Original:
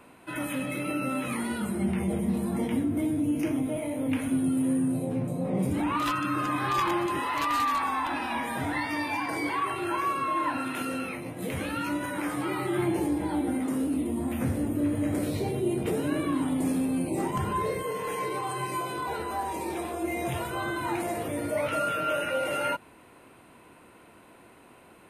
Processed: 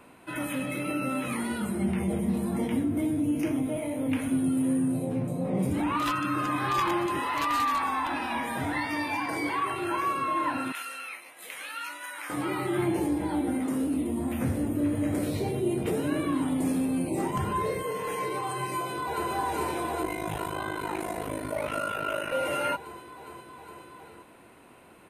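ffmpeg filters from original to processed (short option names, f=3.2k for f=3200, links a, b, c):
-filter_complex "[0:a]asettb=1/sr,asplit=3[a][b][c];[a]atrim=end=10.724[d];[b]atrim=start=10.72:end=12.3,asetpts=PTS-STARTPTS,afade=t=in:d=0.004:c=qsin,afade=t=out:st=1.576:d=0.004:c=qsin,highpass=1.3k[e];[c]atrim=start=12.296[f];[d][e]acrossfade=d=0.004:c1=hsin:c2=qsin[g];[g][f]acrossfade=d=0.004:c1=qsin:c2=hsin,asplit=2[h][i];[i]afade=t=in:st=18.75:d=0.01,afade=t=out:st=19.3:d=0.01,aecho=0:1:410|820|1230|1640|2050|2460|2870|3280|3690|4100|4510|4920:0.841395|0.715186|0.607908|0.516722|0.439214|0.373331|0.317332|0.269732|0.229272|0.194881|0.165649|0.140802[j];[h][j]amix=inputs=2:normalize=0,asettb=1/sr,asplit=3[k][l][m];[k]atrim=end=20.024[n];[l]atrim=start=20.02:end=22.32,asetpts=PTS-STARTPTS,afade=t=in:d=0.004:c=qsin,afade=t=out:st=2.296:d=0.004:c=qsin,aeval=exprs='val(0)*sin(2*PI*26*n/s)':c=same[o];[m]atrim=start=22.316[p];[n][o]acrossfade=d=0.004:c1=hsin:c2=qsin[q];[q][p]acrossfade=d=0.004:c1=qsin:c2=hsin"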